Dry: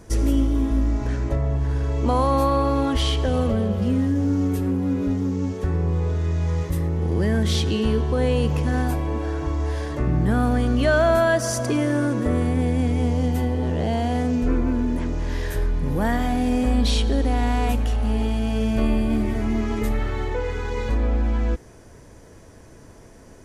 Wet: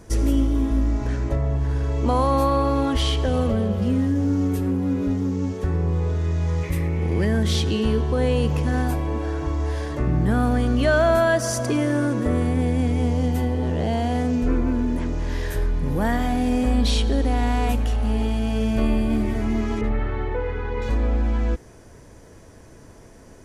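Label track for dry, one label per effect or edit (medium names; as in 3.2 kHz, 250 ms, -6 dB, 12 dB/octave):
6.630000	7.250000	peaking EQ 2.3 kHz +14.5 dB 0.42 oct
19.810000	20.820000	low-pass 2.4 kHz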